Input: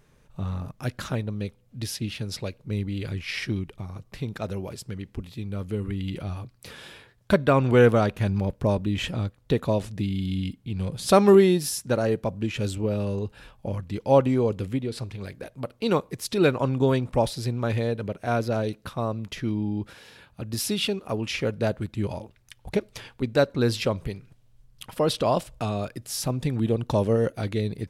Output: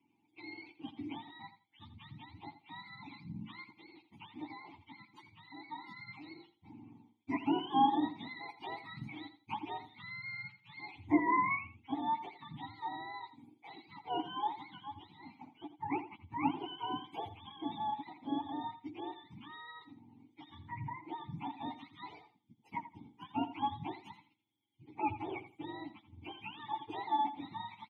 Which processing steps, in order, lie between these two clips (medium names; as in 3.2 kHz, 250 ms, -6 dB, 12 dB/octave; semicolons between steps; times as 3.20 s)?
spectrum inverted on a logarithmic axis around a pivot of 630 Hz; vowel filter u; on a send: feedback delay 84 ms, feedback 21%, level -13 dB; on the sum: trim +1 dB